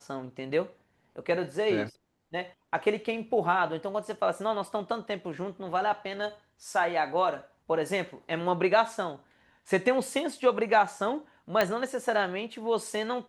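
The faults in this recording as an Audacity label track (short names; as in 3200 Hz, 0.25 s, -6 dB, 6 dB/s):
11.610000	11.610000	pop -11 dBFS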